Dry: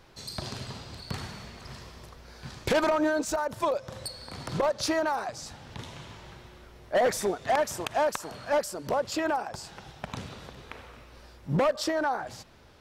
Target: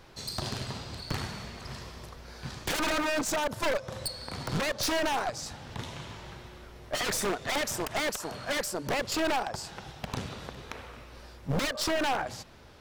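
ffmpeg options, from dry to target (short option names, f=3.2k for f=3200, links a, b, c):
-af "aeval=exprs='0.0501*(abs(mod(val(0)/0.0501+3,4)-2)-1)':c=same,aeval=exprs='0.0501*(cos(1*acos(clip(val(0)/0.0501,-1,1)))-cos(1*PI/2))+0.0141*(cos(2*acos(clip(val(0)/0.0501,-1,1)))-cos(2*PI/2))+0.00141*(cos(8*acos(clip(val(0)/0.0501,-1,1)))-cos(8*PI/2))':c=same,volume=2.5dB"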